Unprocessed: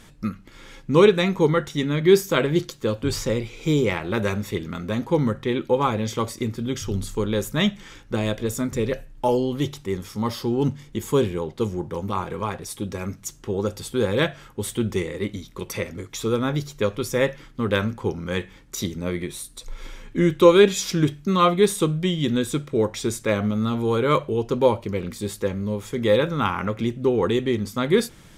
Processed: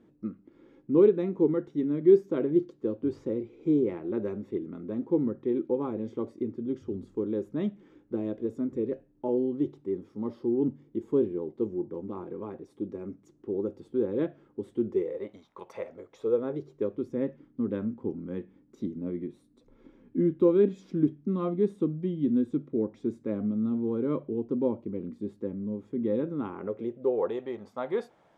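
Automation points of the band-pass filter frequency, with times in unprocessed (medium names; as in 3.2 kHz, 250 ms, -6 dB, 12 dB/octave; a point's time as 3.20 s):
band-pass filter, Q 2.8
14.85 s 320 Hz
15.46 s 890 Hz
17.13 s 270 Hz
26.19 s 270 Hz
27.41 s 710 Hz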